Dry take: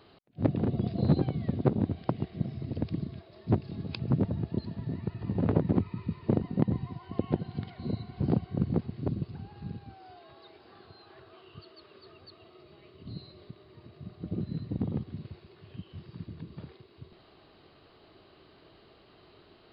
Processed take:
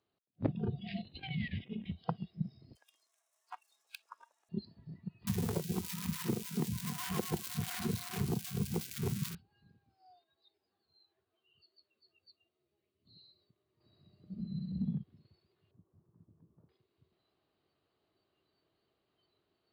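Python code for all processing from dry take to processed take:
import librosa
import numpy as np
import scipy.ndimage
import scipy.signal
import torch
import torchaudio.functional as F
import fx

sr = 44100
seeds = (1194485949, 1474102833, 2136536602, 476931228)

y = fx.chain(x, sr, fx.band_shelf(hz=2400.0, db=11.5, octaves=1.1),
    fx.over_compress(threshold_db=-33.0, ratio=-1.0), at=(0.79, 1.91))
y = fx.chain(y, sr, fx.median_filter(points=9),
    fx.highpass(hz=850.0, slope=24), at=(2.75, 4.49))
y = fx.chain(y, sr, fx.crossing_spikes(level_db=-22.5),
    fx.echo_bbd(ms=274, stages=4096, feedback_pct=58, wet_db=-12.0),
    fx.band_squash(depth_pct=100), at=(5.27, 9.35))
y = fx.chain(y, sr, fx.peak_eq(hz=1200.0, db=-5.5, octaves=0.38),
    fx.ensemble(), at=(10.24, 13.05))
y = fx.chain(y, sr, fx.room_flutter(wall_m=11.0, rt60_s=1.4),
    fx.band_squash(depth_pct=40), at=(13.8, 14.96))
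y = fx.chain(y, sr, fx.lowpass(hz=1200.0, slope=24),
    fx.doubler(ms=18.0, db=-12.5), at=(15.71, 16.69))
y = fx.noise_reduce_blind(y, sr, reduce_db=20)
y = scipy.signal.sosfilt(scipy.signal.butter(2, 58.0, 'highpass', fs=sr, output='sos'), y)
y = fx.rider(y, sr, range_db=3, speed_s=0.5)
y = y * 10.0 ** (-5.0 / 20.0)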